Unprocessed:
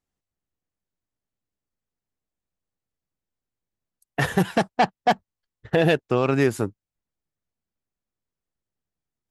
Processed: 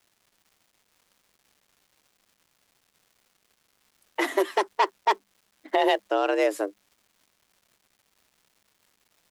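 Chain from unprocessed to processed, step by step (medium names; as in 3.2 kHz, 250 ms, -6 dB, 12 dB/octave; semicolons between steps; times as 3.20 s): frequency shift +200 Hz; crackle 520 per s -49 dBFS; trim -3 dB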